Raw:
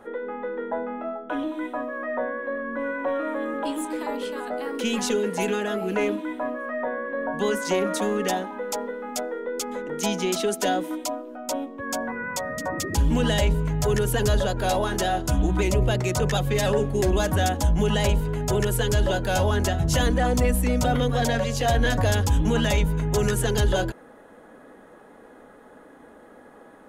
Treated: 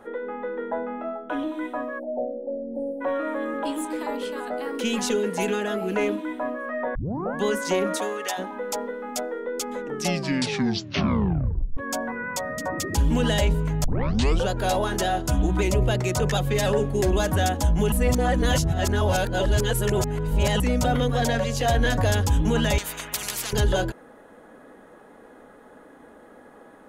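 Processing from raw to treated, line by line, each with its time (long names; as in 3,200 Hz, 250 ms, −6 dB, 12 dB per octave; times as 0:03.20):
0:01.99–0:03.01: time-frequency box erased 890–8,200 Hz
0:06.95: tape start 0.41 s
0:07.96–0:08.37: high-pass filter 320 Hz → 950 Hz
0:09.81: tape stop 1.96 s
0:13.84: tape start 0.64 s
0:17.92–0:20.60: reverse
0:22.78–0:23.53: every bin compressed towards the loudest bin 10 to 1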